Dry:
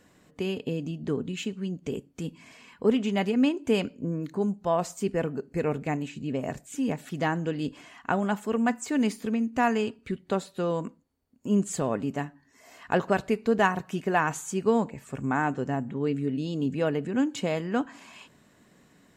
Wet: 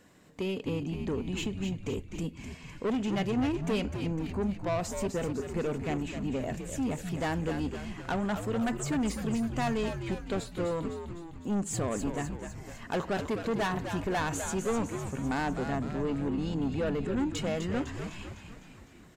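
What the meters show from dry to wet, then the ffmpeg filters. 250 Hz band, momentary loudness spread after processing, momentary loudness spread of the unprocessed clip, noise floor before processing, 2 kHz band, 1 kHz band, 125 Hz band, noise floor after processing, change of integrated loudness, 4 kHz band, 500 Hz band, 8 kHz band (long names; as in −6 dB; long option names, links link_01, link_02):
−3.5 dB, 8 LU, 9 LU, −62 dBFS, −5.0 dB, −5.5 dB, −1.0 dB, −50 dBFS, −4.0 dB, −1.5 dB, −4.5 dB, 0.0 dB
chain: -filter_complex "[0:a]asoftclip=type=tanh:threshold=-26dB,asplit=8[link_01][link_02][link_03][link_04][link_05][link_06][link_07][link_08];[link_02]adelay=253,afreqshift=-87,volume=-7.5dB[link_09];[link_03]adelay=506,afreqshift=-174,volume=-12.2dB[link_10];[link_04]adelay=759,afreqshift=-261,volume=-17dB[link_11];[link_05]adelay=1012,afreqshift=-348,volume=-21.7dB[link_12];[link_06]adelay=1265,afreqshift=-435,volume=-26.4dB[link_13];[link_07]adelay=1518,afreqshift=-522,volume=-31.2dB[link_14];[link_08]adelay=1771,afreqshift=-609,volume=-35.9dB[link_15];[link_01][link_09][link_10][link_11][link_12][link_13][link_14][link_15]amix=inputs=8:normalize=0"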